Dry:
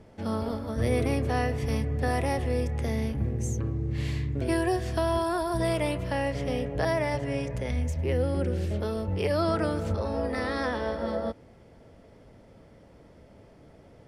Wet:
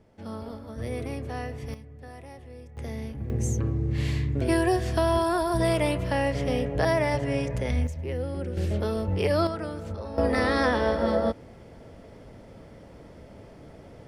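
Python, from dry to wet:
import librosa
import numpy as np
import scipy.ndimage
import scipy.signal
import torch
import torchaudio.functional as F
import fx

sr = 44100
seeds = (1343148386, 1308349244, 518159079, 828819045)

y = fx.gain(x, sr, db=fx.steps((0.0, -7.0), (1.74, -17.0), (2.77, -6.0), (3.3, 3.0), (7.87, -4.5), (8.57, 2.5), (9.47, -6.0), (10.18, 6.0)))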